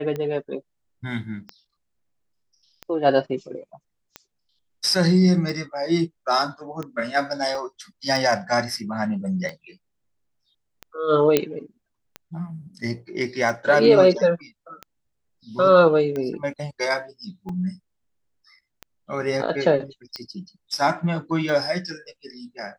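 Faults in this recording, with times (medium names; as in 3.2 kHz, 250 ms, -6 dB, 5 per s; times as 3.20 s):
tick 45 rpm -18 dBFS
7.55 s: dropout 2.8 ms
11.37 s: pop -4 dBFS
17.49 s: dropout 3.4 ms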